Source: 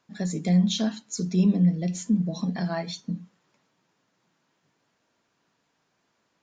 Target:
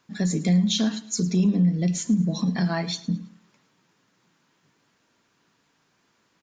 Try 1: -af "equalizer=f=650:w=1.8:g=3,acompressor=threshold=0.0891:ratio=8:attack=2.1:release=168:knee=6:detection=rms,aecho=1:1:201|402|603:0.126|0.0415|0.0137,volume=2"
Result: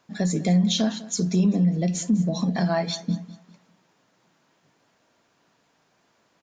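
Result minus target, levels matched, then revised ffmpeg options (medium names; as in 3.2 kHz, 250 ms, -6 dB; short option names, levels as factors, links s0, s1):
echo 93 ms late; 500 Hz band +4.5 dB
-af "equalizer=f=650:w=1.8:g=-5.5,acompressor=threshold=0.0891:ratio=8:attack=2.1:release=168:knee=6:detection=rms,aecho=1:1:108|216|324:0.126|0.0415|0.0137,volume=2"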